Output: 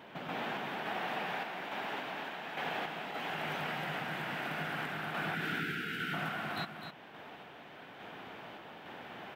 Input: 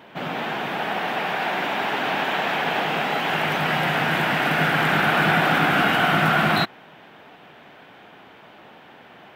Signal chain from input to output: time-frequency box 5.35–6.14 s, 480–1300 Hz -22 dB; compression 6:1, threshold -35 dBFS, peak gain reduction 18 dB; random-step tremolo; on a send: delay 256 ms -8 dB

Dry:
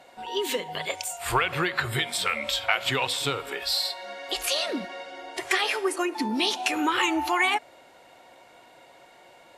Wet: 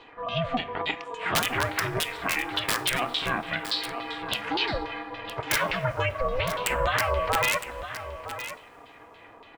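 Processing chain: LFO low-pass saw down 3.5 Hz 830–3700 Hz; integer overflow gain 11.5 dB; two-slope reverb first 0.27 s, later 3.9 s, from -22 dB, DRR 15 dB; peak limiter -16 dBFS, peak gain reduction 5.5 dB; ring modulator 250 Hz; on a send: delay 962 ms -11.5 dB; on the sum: trim +2.5 dB

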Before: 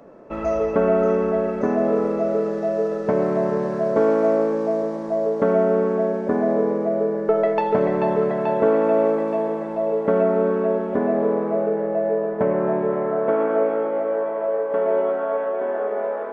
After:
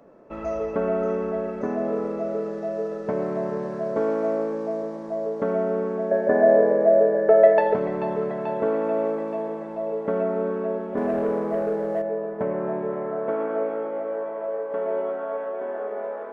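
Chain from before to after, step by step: 6.11–7.74 s: small resonant body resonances 600/1700 Hz, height 16 dB, ringing for 20 ms; 10.97–12.02 s: waveshaping leveller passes 1; trim -6 dB

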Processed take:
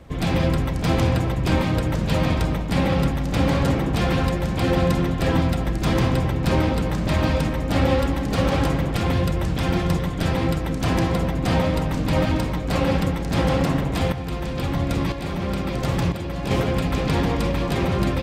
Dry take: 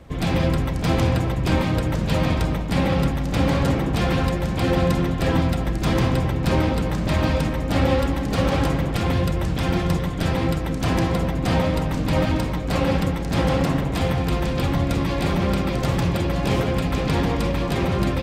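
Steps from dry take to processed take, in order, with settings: 14.12–16.51 s: tremolo saw up 1 Hz, depth 60%

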